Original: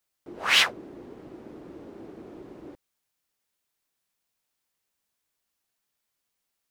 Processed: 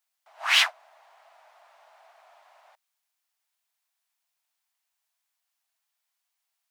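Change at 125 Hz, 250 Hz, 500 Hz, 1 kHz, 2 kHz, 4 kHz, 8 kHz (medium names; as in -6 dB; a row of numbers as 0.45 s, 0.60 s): under -40 dB, under -40 dB, -9.0 dB, -0.5 dB, 0.0 dB, 0.0 dB, -1.0 dB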